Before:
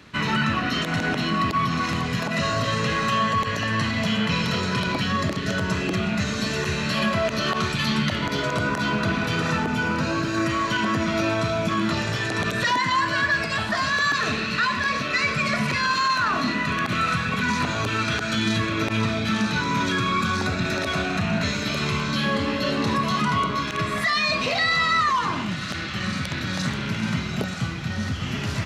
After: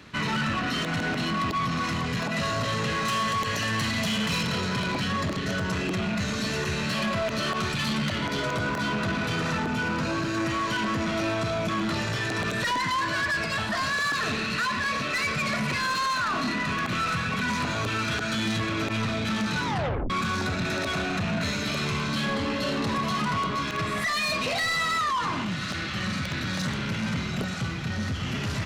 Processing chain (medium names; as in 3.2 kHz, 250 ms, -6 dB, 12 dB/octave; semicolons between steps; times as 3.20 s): 3.05–4.43 s: treble shelf 4.2 kHz +10 dB; saturation -23 dBFS, distortion -12 dB; 19.66 s: tape stop 0.44 s